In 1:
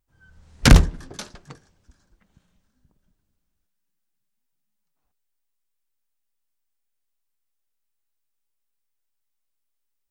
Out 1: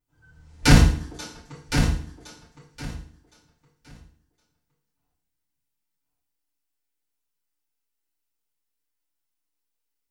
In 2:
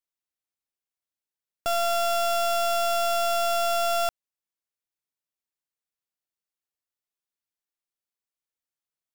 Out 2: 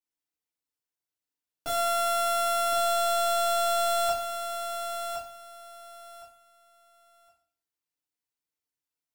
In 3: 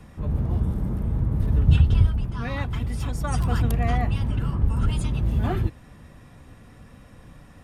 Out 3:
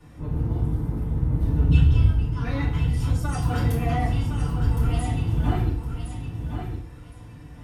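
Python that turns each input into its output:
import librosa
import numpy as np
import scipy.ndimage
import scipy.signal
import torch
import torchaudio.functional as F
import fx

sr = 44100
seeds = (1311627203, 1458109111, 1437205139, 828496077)

y = fx.echo_feedback(x, sr, ms=1064, feedback_pct=21, wet_db=-7.5)
y = fx.rev_fdn(y, sr, rt60_s=0.49, lf_ratio=1.2, hf_ratio=1.0, size_ms=20.0, drr_db=-8.5)
y = y * 10.0 ** (-10.0 / 20.0)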